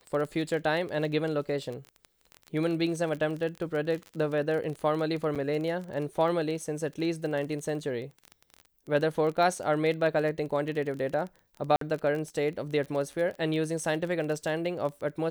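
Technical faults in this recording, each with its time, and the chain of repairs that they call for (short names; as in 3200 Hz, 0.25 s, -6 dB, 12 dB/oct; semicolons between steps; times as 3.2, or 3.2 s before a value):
crackle 22/s -33 dBFS
5.35–5.36 gap 7 ms
11.76–11.81 gap 53 ms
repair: de-click; interpolate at 5.35, 7 ms; interpolate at 11.76, 53 ms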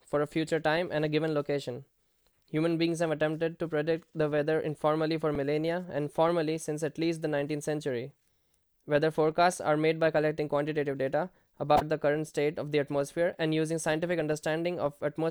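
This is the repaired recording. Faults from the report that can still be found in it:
none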